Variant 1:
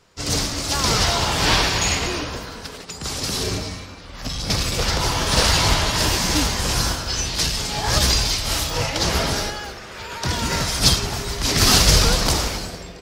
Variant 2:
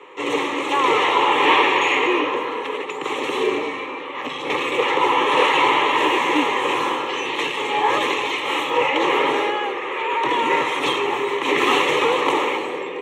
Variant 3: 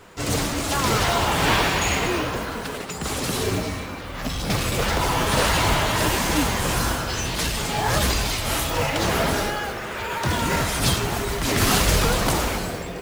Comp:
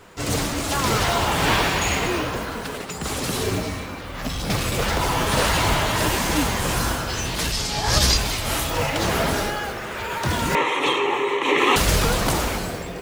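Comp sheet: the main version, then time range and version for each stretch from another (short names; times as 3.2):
3
7.52–8.17 from 1
10.55–11.76 from 2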